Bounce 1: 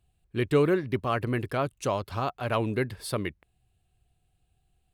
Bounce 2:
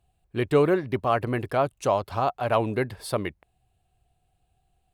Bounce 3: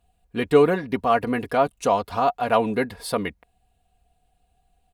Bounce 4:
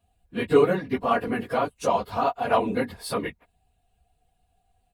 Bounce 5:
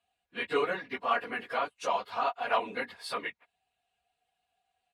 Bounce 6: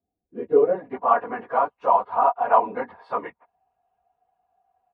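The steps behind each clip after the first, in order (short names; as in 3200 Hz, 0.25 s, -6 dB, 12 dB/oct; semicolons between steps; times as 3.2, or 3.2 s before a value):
bell 740 Hz +8 dB 1.1 oct
comb 4.2 ms, depth 66%; gain +2 dB
phase scrambler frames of 50 ms; gain -2.5 dB
band-pass 2300 Hz, Q 0.71
low-pass sweep 320 Hz -> 940 Hz, 0.23–1.07; gain +6 dB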